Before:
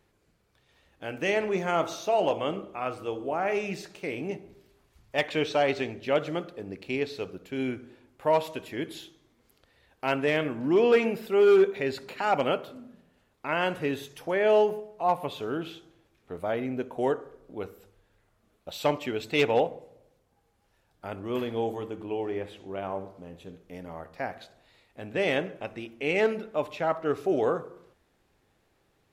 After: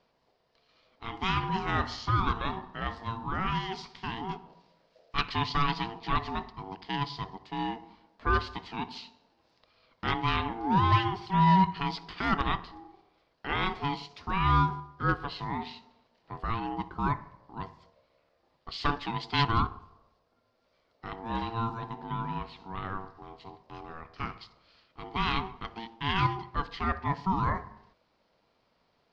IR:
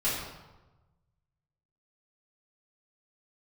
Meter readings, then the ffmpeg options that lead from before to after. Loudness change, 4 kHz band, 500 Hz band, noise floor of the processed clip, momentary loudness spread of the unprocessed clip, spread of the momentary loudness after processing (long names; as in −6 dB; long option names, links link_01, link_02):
−2.5 dB, +2.0 dB, −16.5 dB, −72 dBFS, 17 LU, 17 LU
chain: -af "aeval=exprs='val(0)*sin(2*PI*570*n/s)':channel_layout=same,lowpass=frequency=4800:width_type=q:width=3.9,aemphasis=mode=reproduction:type=50fm"